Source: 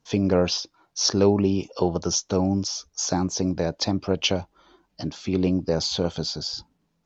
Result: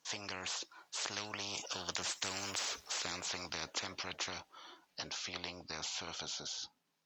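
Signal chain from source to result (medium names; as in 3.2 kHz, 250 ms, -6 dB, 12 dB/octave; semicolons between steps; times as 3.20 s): Doppler pass-by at 2.51 s, 12 m/s, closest 2.1 m; high-pass 1.5 kHz 6 dB/octave; spectrum-flattening compressor 10:1; trim -1 dB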